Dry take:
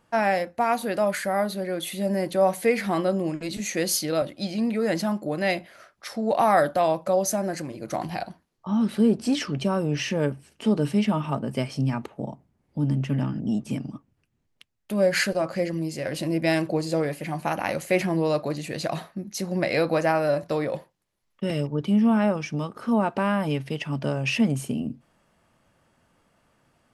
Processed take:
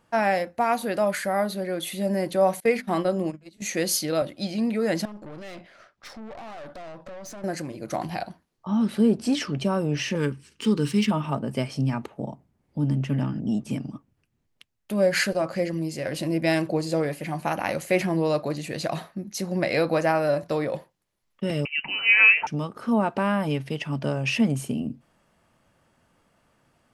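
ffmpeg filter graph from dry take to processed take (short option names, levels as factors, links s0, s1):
-filter_complex "[0:a]asettb=1/sr,asplit=3[s0][s1][s2];[s0]atrim=end=2.604[s3];[s1]atrim=start=2.6:end=3.62,asetpts=PTS-STARTPTS,afade=t=in:d=0.004:c=qsin,afade=t=out:st=1.016:d=0.004:c=qsin,agate=range=0.0631:threshold=0.0398:ratio=16:release=100:detection=peak,bandreject=f=50:t=h:w=6,bandreject=f=100:t=h:w=6,bandreject=f=150:t=h:w=6,bandreject=f=200:t=h:w=6,bandreject=f=250:t=h:w=6[s4];[s2]atrim=start=3.616[s5];[s3][s4]acrossfade=d=0.004:c1=hsin:c2=qsin[s6];[s6][s5]acrossfade=d=0.004:c1=qsin:c2=hsin,asettb=1/sr,asplit=3[s7][s8][s9];[s7]atrim=end=5.054[s10];[s8]atrim=start=5.05:end=7.44,asetpts=PTS-STARTPTS,afade=t=in:d=0.004:c=qsin,afade=t=out:st=2.386:d=0.004:c=qsin,lowpass=6000,acompressor=threshold=0.0355:ratio=8:attack=3.2:release=140:knee=1:detection=peak,aeval=exprs='(tanh(70.8*val(0)+0.55)-tanh(0.55))/70.8':c=same[s11];[s9]atrim=start=7.436[s12];[s10][s11]acrossfade=d=0.004:c1=hsin:c2=qsin[s13];[s13][s12]acrossfade=d=0.004:c1=qsin:c2=hsin,asettb=1/sr,asplit=3[s14][s15][s16];[s14]atrim=end=10.154[s17];[s15]atrim=start=10.15:end=11.11,asetpts=PTS-STARTPTS,afade=t=in:d=0.004:c=qsin,afade=t=out:st=0.956:d=0.004:c=qsin,highshelf=f=3500:g=12,adynamicsmooth=sensitivity=7.5:basefreq=5500,asuperstop=centerf=680:order=4:qfactor=1.6[s18];[s16]atrim=start=11.106[s19];[s17][s18]acrossfade=d=0.004:c1=hsin:c2=qsin[s20];[s20][s19]acrossfade=d=0.004:c1=qsin:c2=hsin,asettb=1/sr,asplit=3[s21][s22][s23];[s21]atrim=end=21.654[s24];[s22]atrim=start=21.65:end=22.47,asetpts=PTS-STARTPTS,afade=t=in:d=0.004:c=qsin,afade=t=out:st=0.816:d=0.004:c=qsin,highpass=f=710:t=q:w=2.1,acontrast=68,lowpass=f=2700:t=q:w=0.5098,lowpass=f=2700:t=q:w=0.6013,lowpass=f=2700:t=q:w=0.9,lowpass=f=2700:t=q:w=2.563,afreqshift=-3200[s25];[s23]atrim=start=22.466[s26];[s24][s25]acrossfade=d=0.004:c1=hsin:c2=qsin[s27];[s27][s26]acrossfade=d=0.004:c1=qsin:c2=hsin"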